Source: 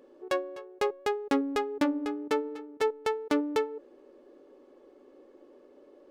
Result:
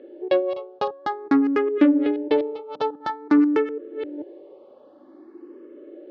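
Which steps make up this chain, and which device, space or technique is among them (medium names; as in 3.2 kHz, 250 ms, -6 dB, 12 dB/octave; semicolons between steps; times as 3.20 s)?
chunks repeated in reverse 422 ms, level -13 dB; barber-pole phaser into a guitar amplifier (barber-pole phaser +0.5 Hz; saturation -20.5 dBFS, distortion -21 dB; cabinet simulation 78–4000 Hz, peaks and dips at 330 Hz +10 dB, 610 Hz +4 dB, 2.5 kHz -3 dB); trim +8.5 dB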